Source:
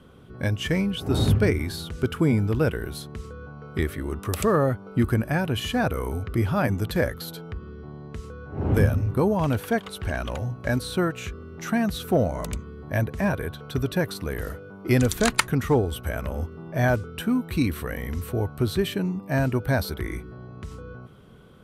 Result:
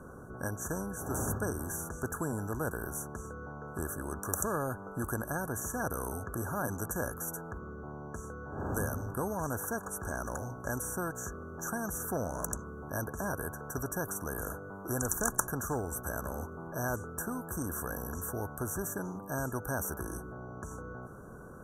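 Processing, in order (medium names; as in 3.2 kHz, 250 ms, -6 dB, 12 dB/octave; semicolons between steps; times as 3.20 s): brick-wall FIR band-stop 1.7–5.7 kHz; spectrum-flattening compressor 2:1; trim -3 dB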